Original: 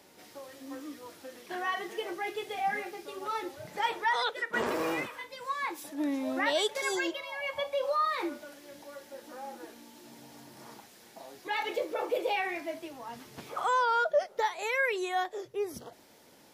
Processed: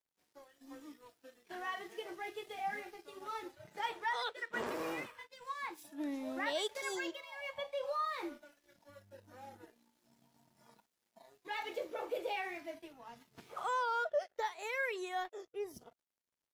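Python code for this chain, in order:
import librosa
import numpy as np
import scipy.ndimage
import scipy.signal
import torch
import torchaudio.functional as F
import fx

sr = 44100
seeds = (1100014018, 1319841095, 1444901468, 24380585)

y = np.sign(x) * np.maximum(np.abs(x) - 10.0 ** (-52.5 / 20.0), 0.0)
y = fx.dmg_buzz(y, sr, base_hz=100.0, harmonics=28, level_db=-58.0, tilt_db=-8, odd_only=False, at=(8.88, 9.62), fade=0.02)
y = fx.noise_reduce_blind(y, sr, reduce_db=9)
y = y * 10.0 ** (-7.5 / 20.0)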